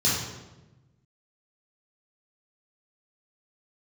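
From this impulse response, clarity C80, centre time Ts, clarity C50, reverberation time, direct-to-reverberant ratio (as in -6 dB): 4.0 dB, 68 ms, 0.0 dB, 1.1 s, -8.0 dB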